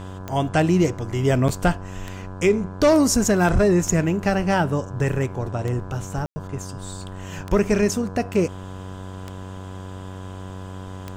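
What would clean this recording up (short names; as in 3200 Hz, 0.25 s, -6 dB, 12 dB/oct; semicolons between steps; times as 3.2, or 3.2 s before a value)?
de-click; de-hum 94.1 Hz, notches 18; notch 1000 Hz, Q 30; room tone fill 6.26–6.36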